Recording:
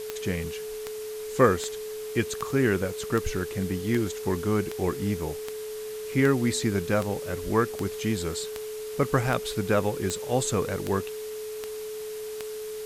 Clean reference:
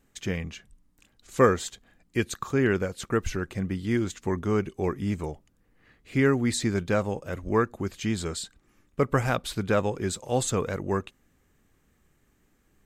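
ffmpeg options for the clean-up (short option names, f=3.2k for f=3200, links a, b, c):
-af "adeclick=t=4,bandreject=f=430:w=30,afwtdn=0.0063"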